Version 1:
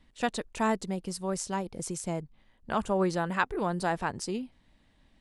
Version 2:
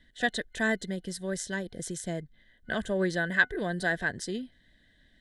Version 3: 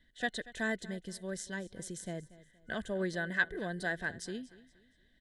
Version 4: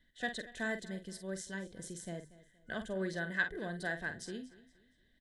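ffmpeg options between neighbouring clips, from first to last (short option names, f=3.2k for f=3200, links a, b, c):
-af "superequalizer=9b=0.282:10b=0.355:11b=3.16:12b=0.562:13b=2.24,volume=-1dB"
-af "aecho=1:1:235|470|705:0.119|0.0392|0.0129,volume=-6.5dB"
-filter_complex "[0:a]asplit=2[a][b];[b]adelay=47,volume=-9dB[c];[a][c]amix=inputs=2:normalize=0,volume=-3dB"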